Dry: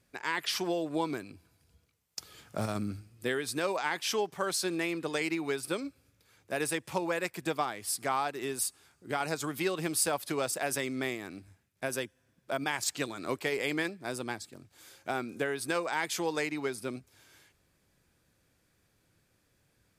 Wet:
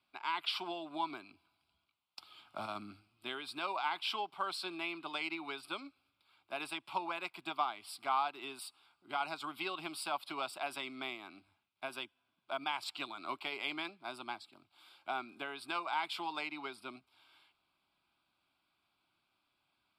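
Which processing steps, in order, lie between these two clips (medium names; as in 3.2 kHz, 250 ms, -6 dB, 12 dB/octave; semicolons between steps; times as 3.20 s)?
three-band isolator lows -22 dB, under 320 Hz, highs -18 dB, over 6.3 kHz; static phaser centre 1.8 kHz, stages 6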